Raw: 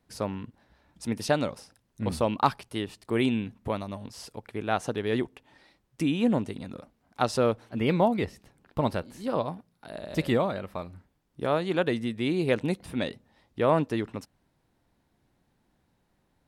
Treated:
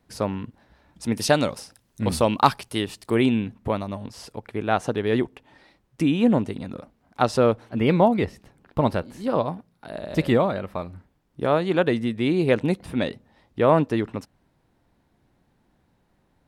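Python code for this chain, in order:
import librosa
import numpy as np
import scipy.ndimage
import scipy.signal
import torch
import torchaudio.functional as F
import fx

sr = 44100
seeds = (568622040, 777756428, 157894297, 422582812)

y = fx.high_shelf(x, sr, hz=3200.0, db=fx.steps((0.0, -2.5), (1.13, 5.0), (3.14, -5.5)))
y = y * librosa.db_to_amplitude(5.5)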